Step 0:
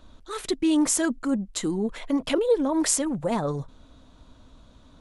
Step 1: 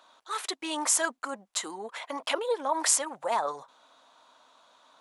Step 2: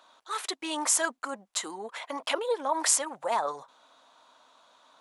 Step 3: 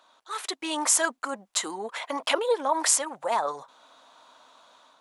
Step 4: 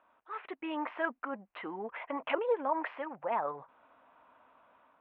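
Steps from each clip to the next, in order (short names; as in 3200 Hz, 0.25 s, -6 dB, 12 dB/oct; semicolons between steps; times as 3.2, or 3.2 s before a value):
resonant high-pass 850 Hz, resonance Q 1.6
nothing audible
AGC gain up to 6 dB; gain -1.5 dB
steep low-pass 2700 Hz 48 dB/oct; low shelf 180 Hz +12 dB; gain -7 dB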